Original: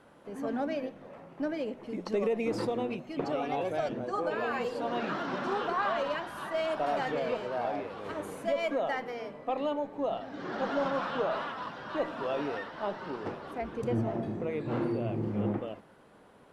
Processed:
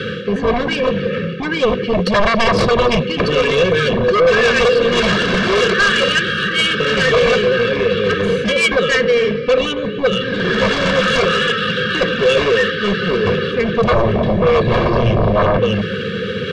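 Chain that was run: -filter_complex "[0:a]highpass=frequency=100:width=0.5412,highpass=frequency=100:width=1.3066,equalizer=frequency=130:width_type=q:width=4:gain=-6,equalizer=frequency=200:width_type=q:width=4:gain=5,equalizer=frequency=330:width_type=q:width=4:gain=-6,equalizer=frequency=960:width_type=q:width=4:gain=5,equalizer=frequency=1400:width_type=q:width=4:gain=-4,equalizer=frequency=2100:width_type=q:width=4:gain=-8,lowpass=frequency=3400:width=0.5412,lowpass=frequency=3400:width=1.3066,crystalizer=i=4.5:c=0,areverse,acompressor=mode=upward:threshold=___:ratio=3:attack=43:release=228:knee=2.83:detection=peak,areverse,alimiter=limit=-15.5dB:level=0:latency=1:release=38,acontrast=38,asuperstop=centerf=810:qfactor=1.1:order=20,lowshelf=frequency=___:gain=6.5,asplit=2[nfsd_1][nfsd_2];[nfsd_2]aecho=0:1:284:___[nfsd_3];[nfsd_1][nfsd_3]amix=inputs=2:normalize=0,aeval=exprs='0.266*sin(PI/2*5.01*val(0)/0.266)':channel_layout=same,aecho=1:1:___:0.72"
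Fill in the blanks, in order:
-35dB, 160, 0.126, 1.8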